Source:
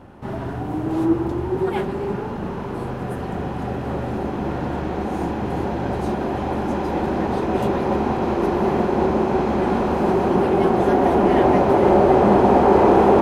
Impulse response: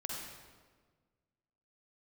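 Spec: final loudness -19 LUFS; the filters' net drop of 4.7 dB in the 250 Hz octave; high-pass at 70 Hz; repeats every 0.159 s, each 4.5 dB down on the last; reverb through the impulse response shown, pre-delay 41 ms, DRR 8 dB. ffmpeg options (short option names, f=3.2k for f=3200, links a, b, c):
-filter_complex "[0:a]highpass=70,equalizer=f=250:t=o:g=-7,aecho=1:1:159|318|477|636|795|954|1113|1272|1431:0.596|0.357|0.214|0.129|0.0772|0.0463|0.0278|0.0167|0.01,asplit=2[a][b];[1:a]atrim=start_sample=2205,adelay=41[c];[b][c]afir=irnorm=-1:irlink=0,volume=-9dB[d];[a][d]amix=inputs=2:normalize=0,volume=1dB"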